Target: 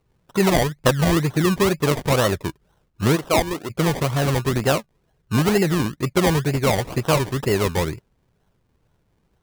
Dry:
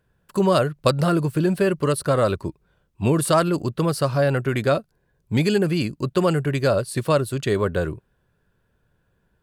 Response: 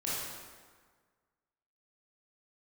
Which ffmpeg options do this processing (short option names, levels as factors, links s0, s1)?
-filter_complex "[0:a]asplit=3[s0][s1][s2];[s0]afade=t=out:st=3.15:d=0.02[s3];[s1]bandpass=f=820:t=q:w=0.79:csg=0,afade=t=in:st=3.15:d=0.02,afade=t=out:st=3.69:d=0.02[s4];[s2]afade=t=in:st=3.69:d=0.02[s5];[s3][s4][s5]amix=inputs=3:normalize=0,bandreject=f=570:w=15,acrusher=samples=26:mix=1:aa=0.000001:lfo=1:lforange=15.6:lforate=2.1,volume=1.19"